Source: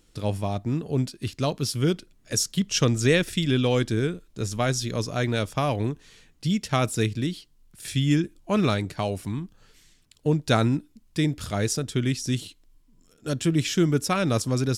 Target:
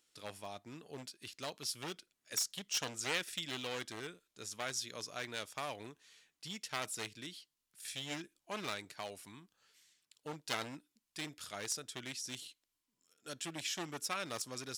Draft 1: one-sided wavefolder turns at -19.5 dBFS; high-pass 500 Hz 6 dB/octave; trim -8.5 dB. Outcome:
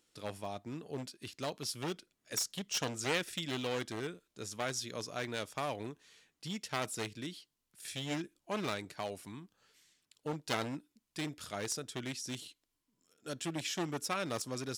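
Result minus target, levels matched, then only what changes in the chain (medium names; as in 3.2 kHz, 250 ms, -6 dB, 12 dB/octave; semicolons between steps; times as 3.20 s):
500 Hz band +4.0 dB
change: high-pass 1.4 kHz 6 dB/octave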